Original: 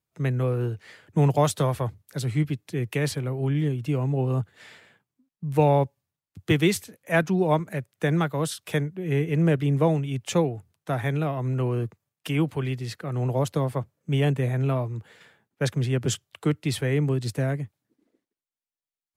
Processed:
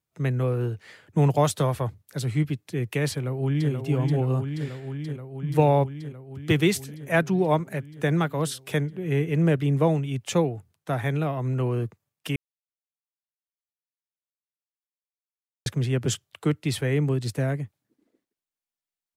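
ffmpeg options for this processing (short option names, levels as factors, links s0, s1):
-filter_complex "[0:a]asplit=2[s0][s1];[s1]afade=t=in:st=3.12:d=0.01,afade=t=out:st=3.72:d=0.01,aecho=0:1:480|960|1440|1920|2400|2880|3360|3840|4320|4800|5280|5760:0.595662|0.47653|0.381224|0.304979|0.243983|0.195187|0.156149|0.124919|0.0999355|0.0799484|0.0639587|0.051167[s2];[s0][s2]amix=inputs=2:normalize=0,asplit=3[s3][s4][s5];[s3]atrim=end=12.36,asetpts=PTS-STARTPTS,afade=t=out:st=12.356:d=0.004:c=hsin[s6];[s4]atrim=start=12.36:end=15.66,asetpts=PTS-STARTPTS,volume=0[s7];[s5]atrim=start=15.66,asetpts=PTS-STARTPTS,afade=t=in:d=0.004:c=hsin[s8];[s6][s7][s8]concat=n=3:v=0:a=1"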